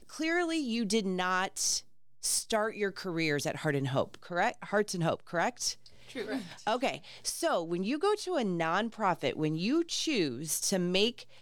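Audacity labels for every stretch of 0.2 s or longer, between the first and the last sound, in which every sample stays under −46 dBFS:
1.810000	2.230000	silence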